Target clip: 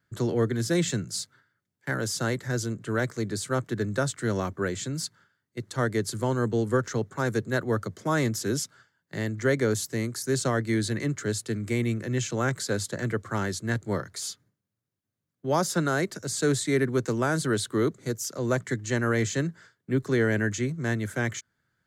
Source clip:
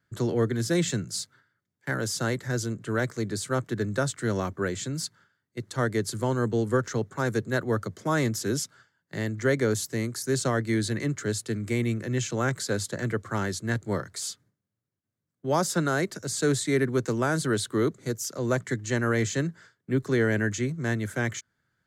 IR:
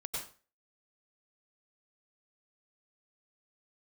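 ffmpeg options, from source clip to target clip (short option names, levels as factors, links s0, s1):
-filter_complex "[0:a]asettb=1/sr,asplit=3[s0][s1][s2];[s0]atrim=end=13.924[s3];[s1]atrim=start=13.92:end=15.73,asetpts=PTS-STARTPTS,afade=t=in:d=0.004:c=qsin,afade=t=out:st=1.806:d=0.004:c=qsin,bandreject=f=8000:w=11[s4];[s2]atrim=start=15.726[s5];[s3][s4]acrossfade=d=0.004:c1=hsin:c2=qsin[s6];[s6][s5]acrossfade=d=0.004:c1=qsin:c2=hsin"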